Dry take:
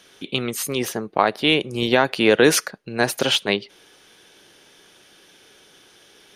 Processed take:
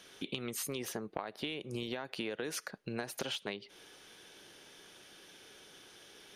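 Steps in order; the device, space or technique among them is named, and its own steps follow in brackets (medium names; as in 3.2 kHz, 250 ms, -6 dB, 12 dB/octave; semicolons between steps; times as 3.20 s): serial compression, leveller first (compression 3:1, threshold -21 dBFS, peak gain reduction 9 dB; compression 6:1, threshold -31 dBFS, peak gain reduction 13.5 dB); trim -4.5 dB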